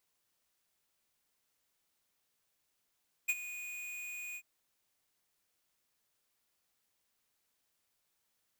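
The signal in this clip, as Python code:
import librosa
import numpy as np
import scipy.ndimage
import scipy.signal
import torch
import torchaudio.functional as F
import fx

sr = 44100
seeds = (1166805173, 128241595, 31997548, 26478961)

y = fx.adsr_tone(sr, wave='square', hz=2470.0, attack_ms=16.0, decay_ms=41.0, sustain_db=-14.5, held_s=1.08, release_ms=60.0, level_db=-29.0)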